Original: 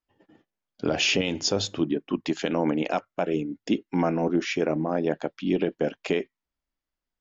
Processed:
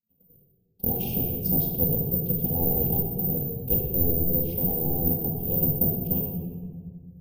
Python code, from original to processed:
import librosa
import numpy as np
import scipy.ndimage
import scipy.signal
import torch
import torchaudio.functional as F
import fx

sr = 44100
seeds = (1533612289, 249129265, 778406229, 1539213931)

y = fx.lower_of_two(x, sr, delay_ms=3.5)
y = scipy.signal.sosfilt(scipy.signal.ellip(3, 1.0, 40, [700.0, 2800.0], 'bandstop', fs=sr, output='sos'), y)
y = fx.tilt_eq(y, sr, slope=-3.5)
y = y * np.sin(2.0 * np.pi * 170.0 * np.arange(len(y)) / sr)
y = fx.rotary_switch(y, sr, hz=1.0, then_hz=5.0, switch_at_s=4.81)
y = (np.kron(scipy.signal.resample_poly(y, 1, 3), np.eye(3)[0]) * 3)[:len(y)]
y = fx.room_shoebox(y, sr, seeds[0], volume_m3=2200.0, walls='mixed', distance_m=2.3)
y = y * 10.0 ** (-8.5 / 20.0)